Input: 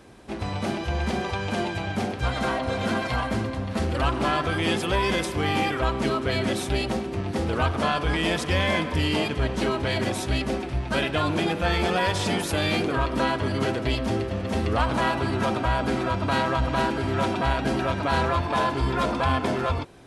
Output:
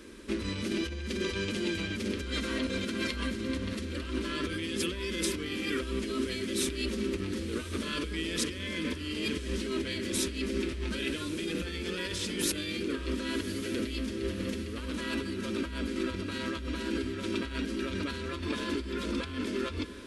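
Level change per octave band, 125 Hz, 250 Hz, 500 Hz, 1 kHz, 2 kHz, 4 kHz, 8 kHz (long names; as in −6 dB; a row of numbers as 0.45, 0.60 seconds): −12.0, −5.0, −9.0, −19.0, −9.0, −5.0, +0.5 decibels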